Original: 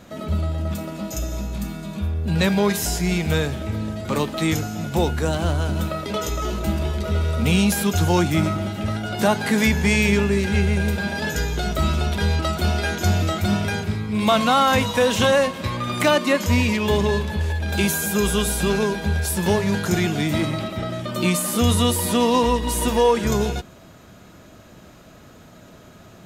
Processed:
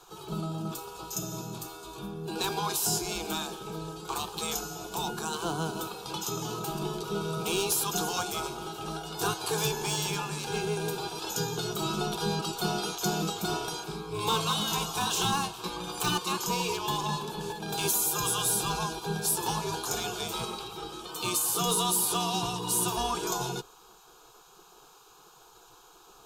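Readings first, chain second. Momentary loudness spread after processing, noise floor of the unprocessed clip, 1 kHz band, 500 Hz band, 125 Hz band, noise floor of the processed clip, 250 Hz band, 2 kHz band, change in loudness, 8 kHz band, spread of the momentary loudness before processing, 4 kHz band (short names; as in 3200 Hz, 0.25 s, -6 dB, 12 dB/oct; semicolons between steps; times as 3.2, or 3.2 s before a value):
11 LU, -46 dBFS, -6.5 dB, -12.0 dB, -15.0 dB, -56 dBFS, -14.5 dB, -13.0 dB, -9.0 dB, -1.0 dB, 9 LU, -4.5 dB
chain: spectral gate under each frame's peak -10 dB weak; overloaded stage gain 18.5 dB; fixed phaser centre 390 Hz, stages 8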